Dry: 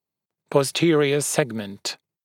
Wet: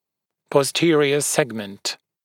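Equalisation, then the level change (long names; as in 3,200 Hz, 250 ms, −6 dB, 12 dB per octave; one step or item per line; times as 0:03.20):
low-shelf EQ 200 Hz −6.5 dB
+3.0 dB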